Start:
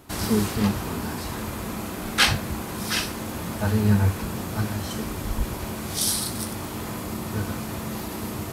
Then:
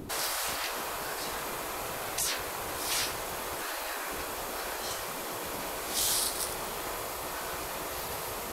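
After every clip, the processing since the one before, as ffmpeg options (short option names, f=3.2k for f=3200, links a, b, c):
-filter_complex "[0:a]acrossover=split=480[a][b];[a]acompressor=mode=upward:threshold=-28dB:ratio=2.5[c];[c][b]amix=inputs=2:normalize=0,afftfilt=real='re*lt(hypot(re,im),0.0891)':imag='im*lt(hypot(re,im),0.0891)':win_size=1024:overlap=0.75"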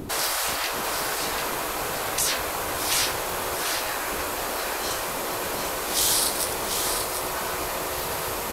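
-af "aecho=1:1:741:0.501,volume=6.5dB"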